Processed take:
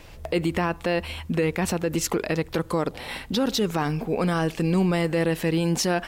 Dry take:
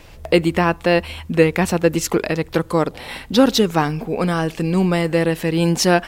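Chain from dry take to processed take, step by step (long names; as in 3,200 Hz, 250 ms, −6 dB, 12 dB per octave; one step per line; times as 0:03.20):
brickwall limiter −12 dBFS, peak gain reduction 10.5 dB
level −2.5 dB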